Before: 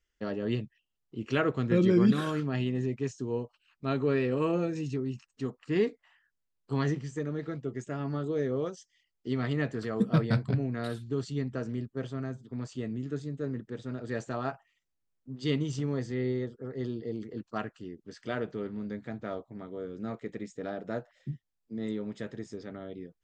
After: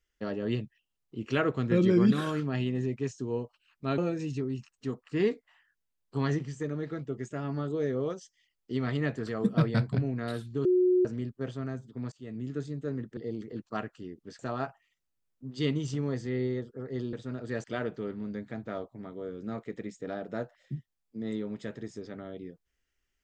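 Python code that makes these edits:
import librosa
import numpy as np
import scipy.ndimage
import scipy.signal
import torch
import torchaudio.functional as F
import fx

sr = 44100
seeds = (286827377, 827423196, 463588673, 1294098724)

y = fx.edit(x, sr, fx.cut(start_s=3.98, length_s=0.56),
    fx.bleep(start_s=11.21, length_s=0.4, hz=364.0, db=-20.0),
    fx.fade_in_from(start_s=12.68, length_s=0.35, floor_db=-23.5),
    fx.swap(start_s=13.73, length_s=0.51, other_s=16.98, other_length_s=1.22), tone=tone)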